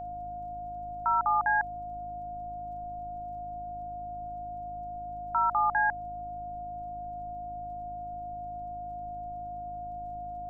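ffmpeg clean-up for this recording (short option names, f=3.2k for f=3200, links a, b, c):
-af "adeclick=t=4,bandreject=f=52.8:t=h:w=4,bandreject=f=105.6:t=h:w=4,bandreject=f=158.4:t=h:w=4,bandreject=f=211.2:t=h:w=4,bandreject=f=264:t=h:w=4,bandreject=f=316.8:t=h:w=4,bandreject=f=710:w=30,afftdn=nr=30:nf=-39"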